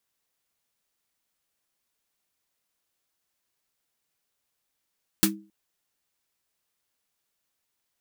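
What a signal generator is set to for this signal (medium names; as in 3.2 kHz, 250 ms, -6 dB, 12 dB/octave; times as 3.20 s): snare drum length 0.27 s, tones 200 Hz, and 320 Hz, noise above 1 kHz, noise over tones 5 dB, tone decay 0.36 s, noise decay 0.12 s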